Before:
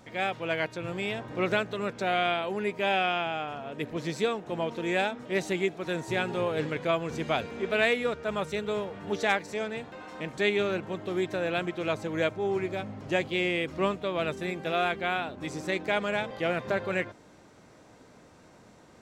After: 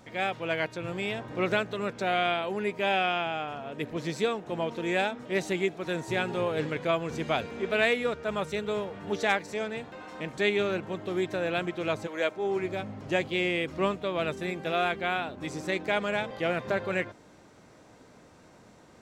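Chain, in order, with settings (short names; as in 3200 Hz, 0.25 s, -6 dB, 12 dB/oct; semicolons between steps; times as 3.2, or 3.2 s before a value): 12.06–12.63 HPF 560 Hz -> 140 Hz 12 dB/oct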